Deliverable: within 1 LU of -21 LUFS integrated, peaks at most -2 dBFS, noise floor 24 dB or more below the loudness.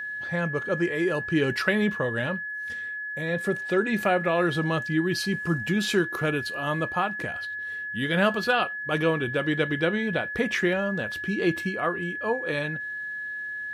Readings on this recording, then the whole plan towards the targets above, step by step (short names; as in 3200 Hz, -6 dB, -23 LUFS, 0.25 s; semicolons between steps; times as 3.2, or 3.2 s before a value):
ticks 33/s; steady tone 1700 Hz; tone level -31 dBFS; loudness -26.5 LUFS; peak -9.0 dBFS; loudness target -21.0 LUFS
-> de-click; notch 1700 Hz, Q 30; gain +5.5 dB